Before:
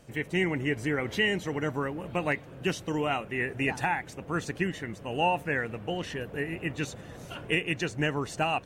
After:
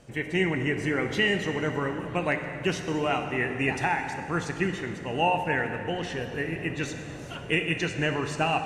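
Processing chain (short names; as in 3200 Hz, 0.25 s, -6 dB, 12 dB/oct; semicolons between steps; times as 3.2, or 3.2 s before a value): LPF 9600 Hz 12 dB/oct; plate-style reverb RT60 2.4 s, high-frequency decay 0.8×, DRR 5.5 dB; gain +1.5 dB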